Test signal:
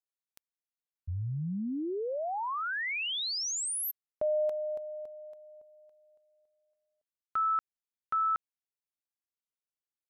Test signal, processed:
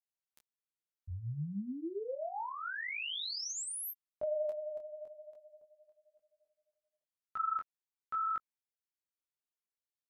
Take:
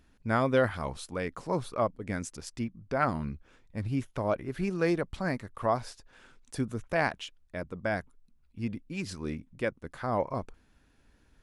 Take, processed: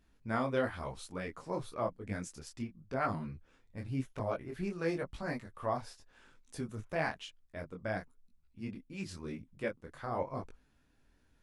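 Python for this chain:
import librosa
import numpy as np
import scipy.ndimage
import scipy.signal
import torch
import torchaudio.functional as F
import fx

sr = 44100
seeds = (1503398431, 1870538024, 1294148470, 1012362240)

y = fx.detune_double(x, sr, cents=33)
y = y * 10.0 ** (-2.5 / 20.0)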